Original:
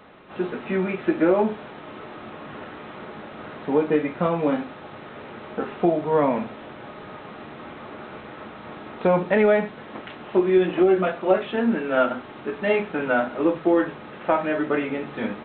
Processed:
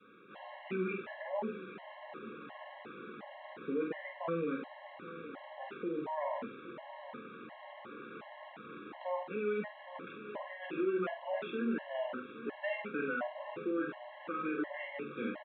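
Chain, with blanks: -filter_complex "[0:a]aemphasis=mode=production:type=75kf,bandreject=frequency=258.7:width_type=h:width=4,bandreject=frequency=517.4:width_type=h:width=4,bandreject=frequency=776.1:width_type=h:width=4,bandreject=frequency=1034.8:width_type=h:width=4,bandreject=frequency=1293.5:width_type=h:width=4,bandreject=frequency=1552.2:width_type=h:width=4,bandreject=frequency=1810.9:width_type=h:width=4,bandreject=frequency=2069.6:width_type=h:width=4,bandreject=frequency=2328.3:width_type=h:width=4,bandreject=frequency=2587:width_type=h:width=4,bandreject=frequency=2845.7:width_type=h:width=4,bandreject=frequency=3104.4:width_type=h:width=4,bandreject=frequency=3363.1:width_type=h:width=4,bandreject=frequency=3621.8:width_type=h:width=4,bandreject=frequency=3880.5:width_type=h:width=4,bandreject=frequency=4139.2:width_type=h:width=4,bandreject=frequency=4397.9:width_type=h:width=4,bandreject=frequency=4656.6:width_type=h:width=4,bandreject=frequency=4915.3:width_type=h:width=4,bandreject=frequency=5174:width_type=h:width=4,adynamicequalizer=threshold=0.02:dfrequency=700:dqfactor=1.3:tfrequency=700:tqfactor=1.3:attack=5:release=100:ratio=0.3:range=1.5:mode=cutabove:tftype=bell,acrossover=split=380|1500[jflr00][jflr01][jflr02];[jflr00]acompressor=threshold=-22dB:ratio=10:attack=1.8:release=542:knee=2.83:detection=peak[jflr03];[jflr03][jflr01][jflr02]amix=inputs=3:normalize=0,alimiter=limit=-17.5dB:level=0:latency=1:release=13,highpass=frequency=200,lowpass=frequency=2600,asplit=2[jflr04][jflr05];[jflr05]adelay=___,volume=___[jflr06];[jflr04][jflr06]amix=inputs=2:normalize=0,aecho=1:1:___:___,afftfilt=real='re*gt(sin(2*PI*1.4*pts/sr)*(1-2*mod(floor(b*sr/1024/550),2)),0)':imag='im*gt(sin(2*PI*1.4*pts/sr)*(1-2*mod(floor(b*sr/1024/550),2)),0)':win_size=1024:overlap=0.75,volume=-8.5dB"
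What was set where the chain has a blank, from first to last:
48, -6dB, 816, 0.188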